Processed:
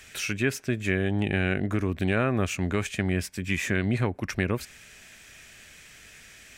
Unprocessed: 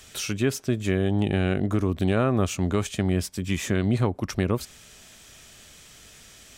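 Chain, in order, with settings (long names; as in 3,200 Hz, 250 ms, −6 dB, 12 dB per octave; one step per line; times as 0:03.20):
flat-topped bell 2,000 Hz +8.5 dB 1 octave
level −3 dB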